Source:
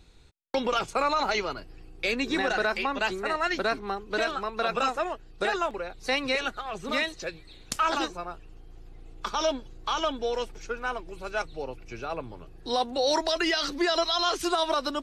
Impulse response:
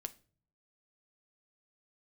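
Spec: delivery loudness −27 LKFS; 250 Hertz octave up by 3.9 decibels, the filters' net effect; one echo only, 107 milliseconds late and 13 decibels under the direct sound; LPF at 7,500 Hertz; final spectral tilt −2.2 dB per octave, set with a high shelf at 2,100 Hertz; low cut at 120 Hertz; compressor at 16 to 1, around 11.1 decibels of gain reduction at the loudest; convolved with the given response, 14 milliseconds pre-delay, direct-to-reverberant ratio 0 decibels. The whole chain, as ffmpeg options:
-filter_complex "[0:a]highpass=120,lowpass=7500,equalizer=frequency=250:width_type=o:gain=5.5,highshelf=frequency=2100:gain=-4.5,acompressor=threshold=-32dB:ratio=16,aecho=1:1:107:0.224,asplit=2[link_01][link_02];[1:a]atrim=start_sample=2205,adelay=14[link_03];[link_02][link_03]afir=irnorm=-1:irlink=0,volume=3dB[link_04];[link_01][link_04]amix=inputs=2:normalize=0,volume=7dB"

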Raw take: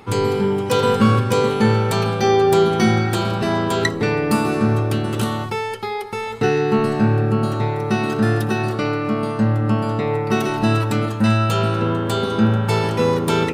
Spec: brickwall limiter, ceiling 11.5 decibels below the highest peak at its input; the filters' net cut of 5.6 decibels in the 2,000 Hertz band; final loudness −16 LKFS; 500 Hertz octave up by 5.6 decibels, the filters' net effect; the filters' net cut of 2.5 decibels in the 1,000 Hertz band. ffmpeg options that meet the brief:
ffmpeg -i in.wav -af "equalizer=frequency=500:width_type=o:gain=8,equalizer=frequency=1000:width_type=o:gain=-4.5,equalizer=frequency=2000:width_type=o:gain=-6.5,volume=5.5dB,alimiter=limit=-8dB:level=0:latency=1" out.wav

